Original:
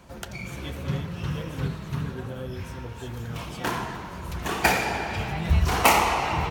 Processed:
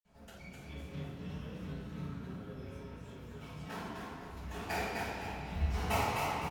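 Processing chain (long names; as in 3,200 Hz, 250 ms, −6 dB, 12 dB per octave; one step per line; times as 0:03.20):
0:01.85–0:03.67: hollow resonant body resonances 1,300/2,300 Hz, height 8 dB
echo with shifted repeats 255 ms, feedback 35%, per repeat +34 Hz, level −4 dB
convolution reverb RT60 0.75 s, pre-delay 46 ms
level −1.5 dB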